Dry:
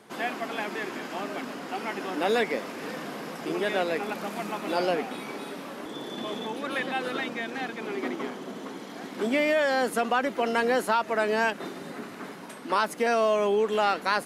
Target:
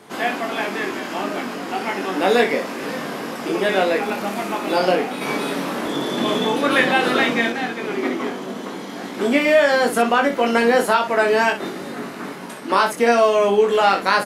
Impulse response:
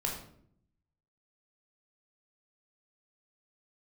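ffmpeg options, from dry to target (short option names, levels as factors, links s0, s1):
-filter_complex "[0:a]asettb=1/sr,asplit=3[s0][s1][s2];[s0]atrim=end=5.214[s3];[s1]atrim=start=5.21:end=7.5,asetpts=PTS-STARTPTS,afade=t=in:d=0.004:c=qsin,afade=t=out:st=2.286:d=0.004:c=qsin,acontrast=33[s4];[s2]atrim=start=7.496[s5];[s3][s4]acrossfade=d=0.004:c1=hsin:c2=qsin[s6];[s6][s5]acrossfade=d=0.004:c1=qsin:c2=hsin,aecho=1:1:21|60:0.668|0.355,volume=2.11"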